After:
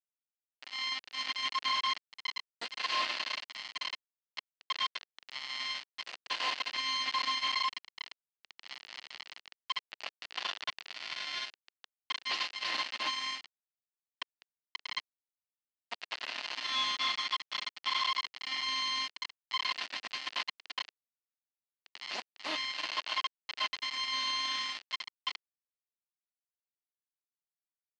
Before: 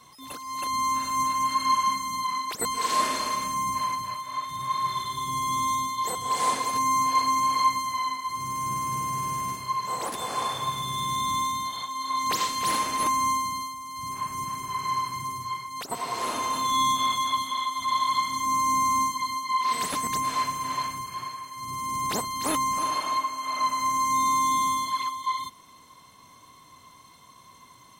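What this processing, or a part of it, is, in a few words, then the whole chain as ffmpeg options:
hand-held game console: -filter_complex "[0:a]aecho=1:1:13|31:0.316|0.126,asettb=1/sr,asplit=3[a][b][c];[a]atrim=end=18.064[d];[b]atrim=start=18.06:end=18.63,asetpts=PTS-STARTPTS,afade=t=in:d=0.004:c=qsin,afade=t=out:st=0.566:d=0.004:c=qsin,highshelf=f=3.9k:g=-6.5[e];[c]atrim=start=18.626[f];[d][e]acrossfade=d=0.004:c1=hsin:c2=qsin[g];[g][f]acrossfade=d=0.004:c1=qsin:c2=hsin,acrusher=bits=3:mix=0:aa=0.000001,highpass=410,equalizer=f=440:t=q:w=4:g=-10,equalizer=f=1.1k:t=q:w=4:g=-3,equalizer=f=1.9k:t=q:w=4:g=5,equalizer=f=2.8k:t=q:w=4:g=8,equalizer=f=4.5k:t=q:w=4:g=7,lowpass=f=4.7k:w=0.5412,lowpass=f=4.7k:w=1.3066,volume=-8.5dB"

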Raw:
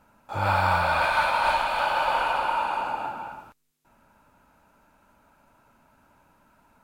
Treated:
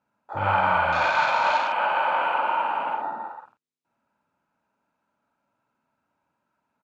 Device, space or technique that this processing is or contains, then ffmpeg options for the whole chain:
over-cleaned archive recording: -filter_complex "[0:a]highpass=120,lowpass=6.6k,afwtdn=0.0178,asplit=2[a][b];[b]adelay=49,volume=-4dB[c];[a][c]amix=inputs=2:normalize=0"

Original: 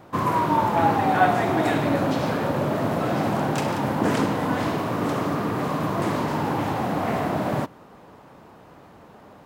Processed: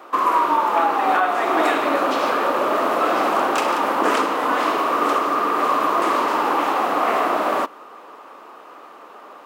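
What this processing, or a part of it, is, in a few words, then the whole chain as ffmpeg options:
laptop speaker: -af "highpass=f=320:w=0.5412,highpass=f=320:w=1.3066,equalizer=f=1.2k:t=o:w=0.39:g=11,equalizer=f=2.7k:t=o:w=0.52:g=4.5,alimiter=limit=-12.5dB:level=0:latency=1:release=433,volume=4.5dB"

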